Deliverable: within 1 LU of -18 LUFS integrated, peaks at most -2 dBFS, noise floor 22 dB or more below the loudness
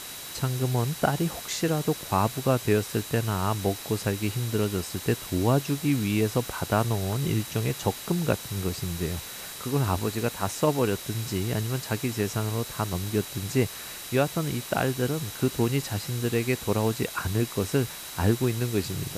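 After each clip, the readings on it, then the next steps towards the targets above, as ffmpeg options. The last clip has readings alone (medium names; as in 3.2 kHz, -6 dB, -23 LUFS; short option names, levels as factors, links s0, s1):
steady tone 3.9 kHz; tone level -46 dBFS; noise floor -39 dBFS; noise floor target -50 dBFS; loudness -27.5 LUFS; peak level -8.5 dBFS; loudness target -18.0 LUFS
-> -af "bandreject=f=3900:w=30"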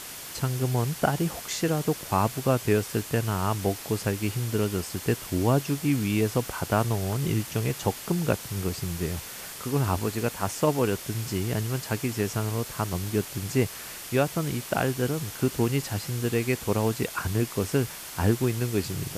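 steady tone not found; noise floor -40 dBFS; noise floor target -50 dBFS
-> -af "afftdn=nr=10:nf=-40"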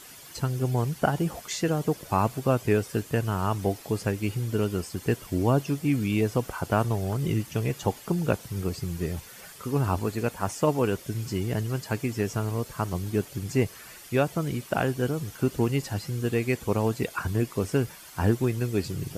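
noise floor -47 dBFS; noise floor target -50 dBFS
-> -af "afftdn=nr=6:nf=-47"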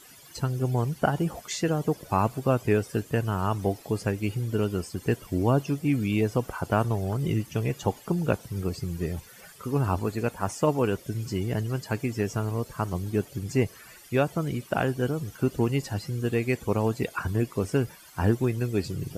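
noise floor -50 dBFS; loudness -28.0 LUFS; peak level -9.0 dBFS; loudness target -18.0 LUFS
-> -af "volume=3.16,alimiter=limit=0.794:level=0:latency=1"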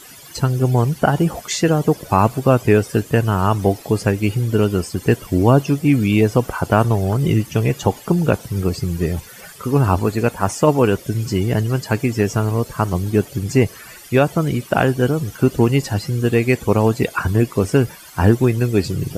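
loudness -18.0 LUFS; peak level -2.0 dBFS; noise floor -40 dBFS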